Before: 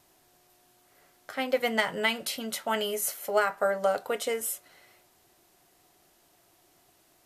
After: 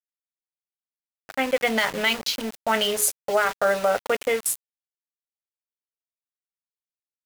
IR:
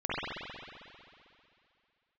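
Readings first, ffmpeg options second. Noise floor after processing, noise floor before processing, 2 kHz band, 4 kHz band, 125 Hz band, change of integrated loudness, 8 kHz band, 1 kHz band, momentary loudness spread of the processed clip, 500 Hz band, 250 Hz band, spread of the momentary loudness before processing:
under -85 dBFS, -64 dBFS, +6.0 dB, +7.0 dB, n/a, +5.5 dB, +7.5 dB, +5.0 dB, 6 LU, +4.5 dB, +5.0 dB, 7 LU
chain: -af "afwtdn=0.0126,bandreject=f=60:t=h:w=6,bandreject=f=120:t=h:w=6,bandreject=f=180:t=h:w=6,bandreject=f=240:t=h:w=6,bandreject=f=300:t=h:w=6,bandreject=f=360:t=h:w=6,bandreject=f=420:t=h:w=6,alimiter=limit=-18.5dB:level=0:latency=1:release=55,aeval=exprs='val(0)*gte(abs(val(0)),0.0119)':c=same,adynamicequalizer=threshold=0.00794:dfrequency=1600:dqfactor=0.7:tfrequency=1600:tqfactor=0.7:attack=5:release=100:ratio=0.375:range=2.5:mode=boostabove:tftype=highshelf,volume=6.5dB"

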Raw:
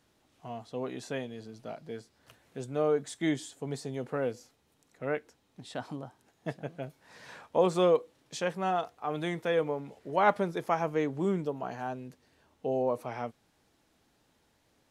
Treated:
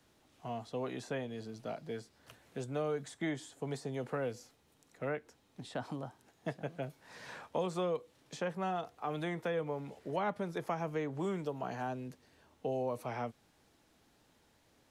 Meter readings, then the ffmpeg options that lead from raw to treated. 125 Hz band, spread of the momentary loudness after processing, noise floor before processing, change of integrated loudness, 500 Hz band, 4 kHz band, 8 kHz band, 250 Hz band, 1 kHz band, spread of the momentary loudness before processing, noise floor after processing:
-3.0 dB, 9 LU, -71 dBFS, -7.0 dB, -7.0 dB, -6.0 dB, -6.0 dB, -5.5 dB, -7.0 dB, 17 LU, -70 dBFS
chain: -filter_complex "[0:a]acrossover=split=190|490|1900[a][b][c][d];[a]acompressor=threshold=-44dB:ratio=4[e];[b]acompressor=threshold=-44dB:ratio=4[f];[c]acompressor=threshold=-39dB:ratio=4[g];[d]acompressor=threshold=-52dB:ratio=4[h];[e][f][g][h]amix=inputs=4:normalize=0,volume=1dB"

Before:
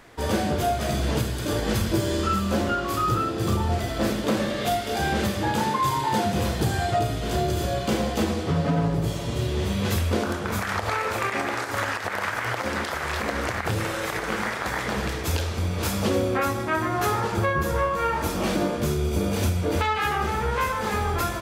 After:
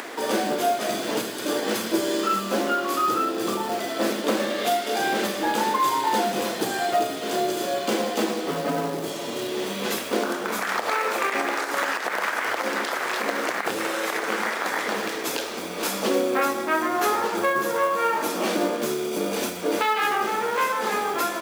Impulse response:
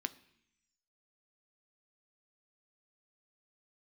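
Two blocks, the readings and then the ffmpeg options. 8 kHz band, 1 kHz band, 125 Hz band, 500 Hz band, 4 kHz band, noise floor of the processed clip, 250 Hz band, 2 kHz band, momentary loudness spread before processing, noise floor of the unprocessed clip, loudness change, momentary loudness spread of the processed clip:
+2.5 dB, +2.0 dB, -17.0 dB, +2.0 dB, +2.0 dB, -32 dBFS, -1.5 dB, +2.0 dB, 3 LU, -30 dBFS, +0.5 dB, 5 LU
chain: -af "acompressor=mode=upward:threshold=-26dB:ratio=2.5,acrusher=bits=5:mode=log:mix=0:aa=0.000001,highpass=f=250:w=0.5412,highpass=f=250:w=1.3066,volume=2dB"

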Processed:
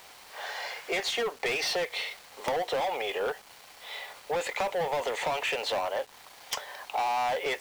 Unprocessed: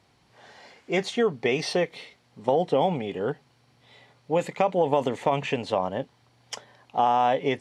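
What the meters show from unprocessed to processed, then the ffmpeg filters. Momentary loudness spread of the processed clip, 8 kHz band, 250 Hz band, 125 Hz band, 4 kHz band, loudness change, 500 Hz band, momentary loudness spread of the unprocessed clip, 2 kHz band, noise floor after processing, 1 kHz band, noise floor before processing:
12 LU, +3.5 dB, -15.0 dB, -16.5 dB, +3.0 dB, -5.5 dB, -6.0 dB, 17 LU, +2.0 dB, -52 dBFS, -5.0 dB, -63 dBFS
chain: -filter_complex "[0:a]highpass=f=460:w=0.5412,highpass=f=460:w=1.3066,asplit=2[a][b];[b]highpass=f=720:p=1,volume=24dB,asoftclip=type=tanh:threshold=-11dB[c];[a][c]amix=inputs=2:normalize=0,lowpass=f=6k:p=1,volume=-6dB,acompressor=threshold=-29dB:ratio=2.5,acrusher=bits=7:mix=0:aa=0.000001,aeval=exprs='(mod(8.41*val(0)+1,2)-1)/8.41':c=same,volume=-2.5dB"

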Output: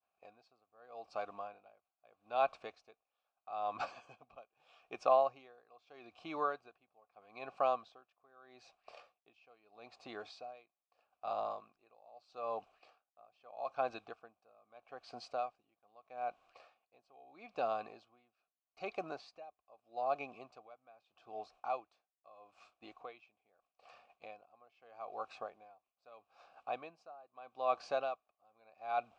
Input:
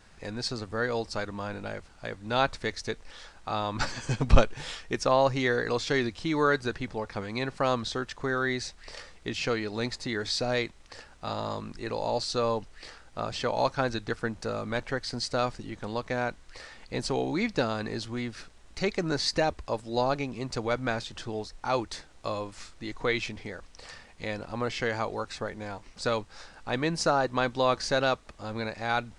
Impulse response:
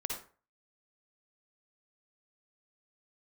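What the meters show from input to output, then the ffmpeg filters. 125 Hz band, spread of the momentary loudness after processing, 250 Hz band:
-33.0 dB, 22 LU, -24.0 dB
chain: -filter_complex "[0:a]asplit=3[a][b][c];[a]bandpass=f=730:t=q:w=8,volume=0dB[d];[b]bandpass=f=1.09k:t=q:w=8,volume=-6dB[e];[c]bandpass=f=2.44k:t=q:w=8,volume=-9dB[f];[d][e][f]amix=inputs=3:normalize=0,agate=range=-33dB:threshold=-60dB:ratio=3:detection=peak,aeval=exprs='val(0)*pow(10,-27*(0.5-0.5*cos(2*PI*0.79*n/s))/20)':c=same,volume=4dB"

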